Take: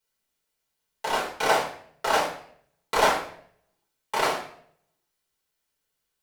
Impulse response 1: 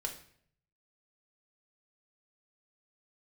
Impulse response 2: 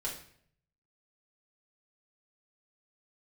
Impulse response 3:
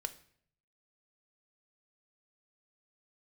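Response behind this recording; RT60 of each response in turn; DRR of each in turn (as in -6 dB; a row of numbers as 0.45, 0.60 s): 2; 0.60, 0.60, 0.60 s; 1.5, -5.0, 8.5 dB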